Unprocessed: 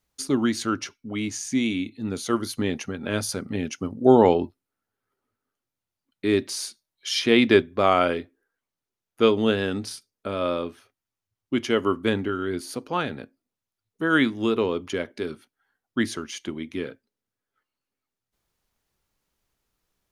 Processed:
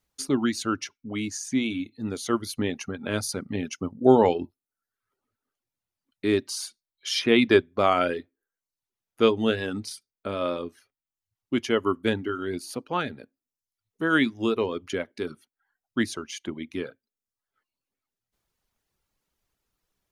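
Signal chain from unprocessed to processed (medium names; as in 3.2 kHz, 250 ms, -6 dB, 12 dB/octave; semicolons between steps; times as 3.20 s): reverb removal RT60 0.6 s; trim -1 dB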